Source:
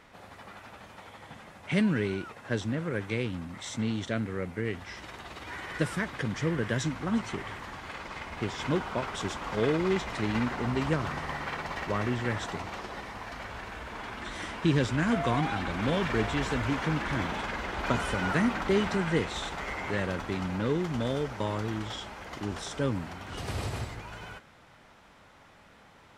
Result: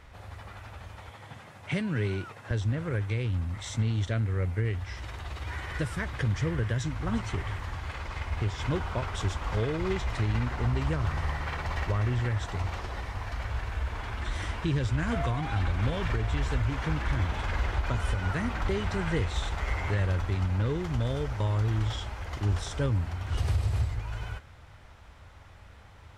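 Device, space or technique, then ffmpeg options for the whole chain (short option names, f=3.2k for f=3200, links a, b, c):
car stereo with a boomy subwoofer: -filter_complex "[0:a]asettb=1/sr,asplit=3[a][b][c];[a]atrim=end=1.094[d];[b]atrim=start=1.09:end=2.51,asetpts=PTS-STARTPTS,afade=t=in:d=0.004:c=qsin,afade=t=out:st=1.416:d=0.004:c=qsin,highpass=f=110:w=0.5412,highpass=f=110:w=1.3066[e];[c]atrim=start=2.506[f];[d][e]acrossfade=d=0.004:c1=hsin:c2=qsin[g];[g][f]acrossfade=d=0.004:c1=qsin:c2=hsin,lowshelf=f=130:t=q:w=1.5:g=13.5,alimiter=limit=-18.5dB:level=0:latency=1:release=377"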